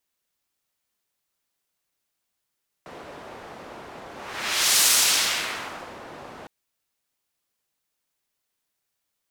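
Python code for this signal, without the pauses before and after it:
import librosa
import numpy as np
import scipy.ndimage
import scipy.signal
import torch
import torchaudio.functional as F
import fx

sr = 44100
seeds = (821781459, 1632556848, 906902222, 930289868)

y = fx.whoosh(sr, seeds[0], length_s=3.61, peak_s=1.98, rise_s=0.78, fall_s=1.24, ends_hz=690.0, peak_hz=7300.0, q=0.76, swell_db=24)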